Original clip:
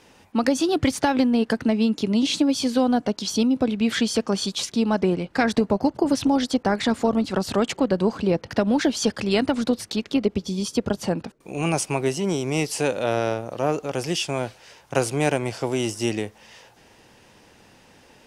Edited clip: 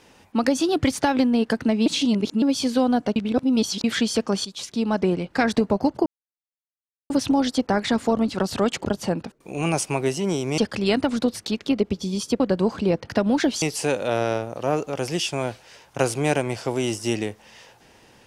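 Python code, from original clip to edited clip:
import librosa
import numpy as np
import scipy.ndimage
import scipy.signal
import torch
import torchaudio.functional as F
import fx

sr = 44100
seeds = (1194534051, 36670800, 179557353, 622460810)

y = fx.edit(x, sr, fx.reverse_span(start_s=1.86, length_s=0.56),
    fx.reverse_span(start_s=3.16, length_s=0.68),
    fx.fade_in_from(start_s=4.45, length_s=0.74, curve='qsin', floor_db=-12.5),
    fx.insert_silence(at_s=6.06, length_s=1.04),
    fx.swap(start_s=7.81, length_s=1.22, other_s=10.85, other_length_s=1.73), tone=tone)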